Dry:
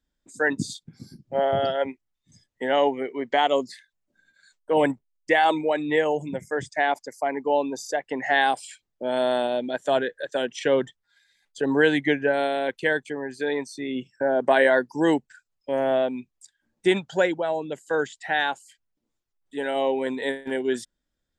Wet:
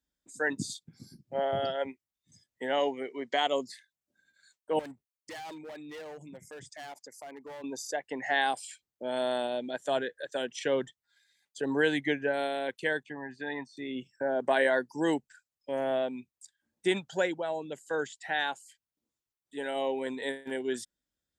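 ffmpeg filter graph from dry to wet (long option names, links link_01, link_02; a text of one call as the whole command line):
ffmpeg -i in.wav -filter_complex "[0:a]asettb=1/sr,asplit=3[link_01][link_02][link_03];[link_01]atrim=end=2.804[link_04];[link_02]atrim=start=2.8:end=3.47,asetpts=PTS-STARTPTS,afade=type=in:duration=0.004:curve=qsin,afade=type=out:start_time=0.666:duration=0.004:curve=qsin,highpass=110,lowpass=6500,bass=frequency=250:gain=-1,treble=frequency=4000:gain=10,bandreject=frequency=860:width=19[link_05];[link_03]atrim=start=3.466[link_06];[link_04][link_05]acrossfade=duration=0.004:curve1=hsin:curve2=qsin[link_07];[link_07][link_06]acrossfade=duration=0.004:curve1=qsin:curve2=hsin,asettb=1/sr,asplit=3[link_08][link_09][link_10];[link_08]atrim=end=4.794[link_11];[link_09]atrim=start=4.79:end=7.64,asetpts=PTS-STARTPTS,afade=type=in:duration=0.004:curve=qsin,afade=type=out:start_time=2.846:duration=0.004:curve=qsin,asoftclip=type=hard:threshold=-23dB,acompressor=threshold=-40dB:ratio=2.5:attack=3.2:release=140:knee=1:detection=peak[link_12];[link_10]atrim=start=7.636[link_13];[link_11][link_12]acrossfade=duration=0.004:curve1=hsin:curve2=qsin[link_14];[link_14][link_13]acrossfade=duration=0.004:curve1=qsin:curve2=hsin,asettb=1/sr,asplit=3[link_15][link_16][link_17];[link_15]atrim=end=13.034[link_18];[link_16]atrim=start=13.03:end=13.77,asetpts=PTS-STARTPTS,afade=type=in:duration=0.004:curve=qsin,afade=type=out:start_time=0.736:duration=0.004:curve=qsin,highpass=100,lowpass=2600,aecho=1:1:1.1:0.6,atrim=end_sample=32634[link_19];[link_17]atrim=start=13.766[link_20];[link_18][link_19]acrossfade=duration=0.004:curve1=hsin:curve2=qsin[link_21];[link_21][link_20]acrossfade=duration=0.004:curve1=qsin:curve2=hsin,highpass=51,highshelf=frequency=4400:gain=7,volume=-7.5dB" out.wav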